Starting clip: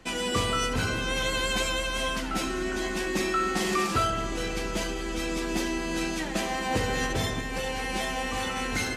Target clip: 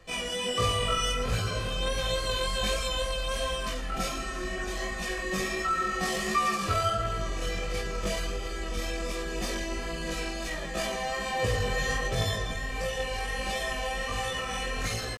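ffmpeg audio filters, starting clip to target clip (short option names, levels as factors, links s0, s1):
-af "aecho=1:1:1.7:0.63,atempo=0.59,flanger=delay=17.5:depth=4.2:speed=1.4"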